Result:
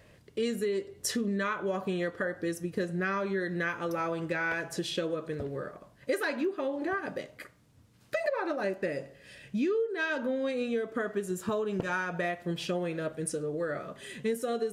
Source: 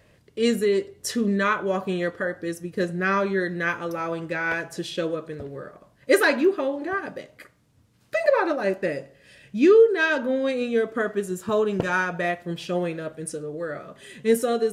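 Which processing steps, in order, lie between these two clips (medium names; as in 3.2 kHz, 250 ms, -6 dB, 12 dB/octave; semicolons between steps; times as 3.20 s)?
compression 6:1, threshold -28 dBFS, peak gain reduction 16 dB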